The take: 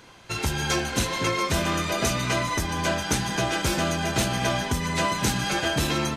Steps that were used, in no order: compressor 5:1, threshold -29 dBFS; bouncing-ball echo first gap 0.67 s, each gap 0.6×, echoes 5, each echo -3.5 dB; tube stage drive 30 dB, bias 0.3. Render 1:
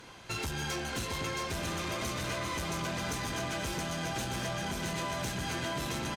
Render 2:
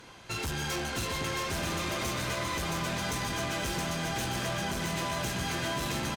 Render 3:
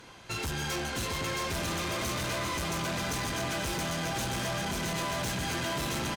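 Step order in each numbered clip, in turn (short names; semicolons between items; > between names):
bouncing-ball echo > compressor > tube stage; tube stage > bouncing-ball echo > compressor; bouncing-ball echo > tube stage > compressor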